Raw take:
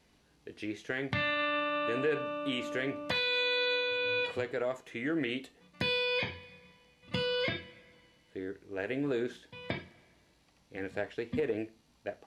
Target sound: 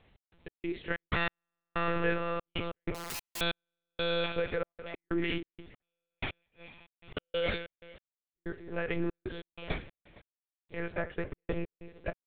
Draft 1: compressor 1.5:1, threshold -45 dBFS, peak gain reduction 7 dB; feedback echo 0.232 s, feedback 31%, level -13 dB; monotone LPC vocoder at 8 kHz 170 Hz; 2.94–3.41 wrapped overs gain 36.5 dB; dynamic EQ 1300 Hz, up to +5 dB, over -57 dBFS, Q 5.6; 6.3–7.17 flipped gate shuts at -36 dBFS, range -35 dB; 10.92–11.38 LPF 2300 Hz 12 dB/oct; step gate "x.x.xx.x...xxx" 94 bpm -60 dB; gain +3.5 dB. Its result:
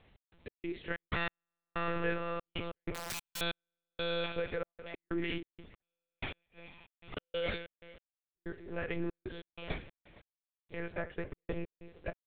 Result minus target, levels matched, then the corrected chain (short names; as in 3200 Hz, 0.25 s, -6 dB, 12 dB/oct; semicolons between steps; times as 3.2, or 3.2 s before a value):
compressor: peak gain reduction +4 dB
compressor 1.5:1, threshold -33.5 dBFS, peak gain reduction 3 dB; feedback echo 0.232 s, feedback 31%, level -13 dB; monotone LPC vocoder at 8 kHz 170 Hz; 2.94–3.41 wrapped overs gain 36.5 dB; dynamic EQ 1300 Hz, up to +5 dB, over -57 dBFS, Q 5.6; 6.3–7.17 flipped gate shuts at -36 dBFS, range -35 dB; 10.92–11.38 LPF 2300 Hz 12 dB/oct; step gate "x.x.xx.x...xxx" 94 bpm -60 dB; gain +3.5 dB